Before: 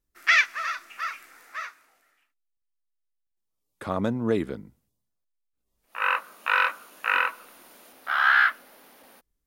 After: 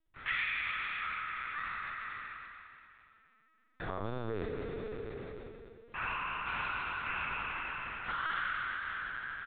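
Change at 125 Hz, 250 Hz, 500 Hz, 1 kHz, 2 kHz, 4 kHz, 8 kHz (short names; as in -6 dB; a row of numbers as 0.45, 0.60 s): -6.5 dB, -13.5 dB, -8.5 dB, -9.5 dB, -11.0 dB, -10.0 dB, under -35 dB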